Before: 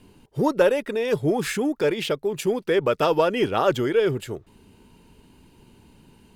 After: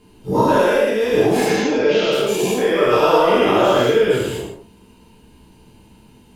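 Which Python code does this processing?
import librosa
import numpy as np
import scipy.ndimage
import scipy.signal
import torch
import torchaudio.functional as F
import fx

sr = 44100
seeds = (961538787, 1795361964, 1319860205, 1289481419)

y = fx.spec_dilate(x, sr, span_ms=240)
y = fx.steep_lowpass(y, sr, hz=6700.0, slope=72, at=(1.44, 2.11), fade=0.02)
y = fx.rev_gated(y, sr, seeds[0], gate_ms=210, shape='falling', drr_db=-6.0)
y = y * librosa.db_to_amplitude(-8.0)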